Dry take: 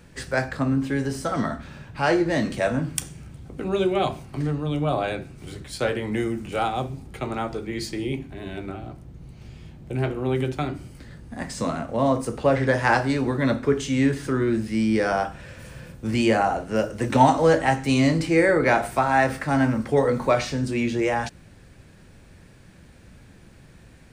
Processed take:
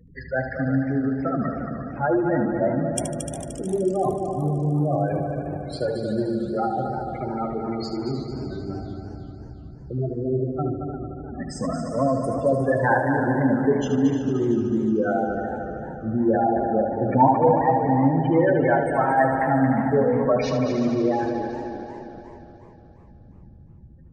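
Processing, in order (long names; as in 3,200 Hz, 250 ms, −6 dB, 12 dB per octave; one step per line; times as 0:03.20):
gate on every frequency bin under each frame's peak −10 dB strong
echo machine with several playback heads 75 ms, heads first and third, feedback 72%, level −8 dB
feedback echo with a swinging delay time 351 ms, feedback 44%, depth 159 cents, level −12.5 dB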